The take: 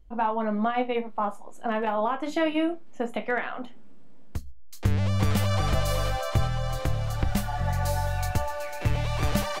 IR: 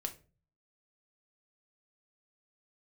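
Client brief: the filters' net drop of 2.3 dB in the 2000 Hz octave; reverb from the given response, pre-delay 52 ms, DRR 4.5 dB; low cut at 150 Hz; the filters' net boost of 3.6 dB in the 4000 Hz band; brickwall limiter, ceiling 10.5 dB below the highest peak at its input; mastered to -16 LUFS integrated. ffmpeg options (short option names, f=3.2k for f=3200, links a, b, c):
-filter_complex "[0:a]highpass=150,equalizer=f=2k:t=o:g=-4.5,equalizer=f=4k:t=o:g=6.5,alimiter=limit=-23.5dB:level=0:latency=1,asplit=2[a][b];[1:a]atrim=start_sample=2205,adelay=52[c];[b][c]afir=irnorm=-1:irlink=0,volume=-4dB[d];[a][d]amix=inputs=2:normalize=0,volume=16.5dB"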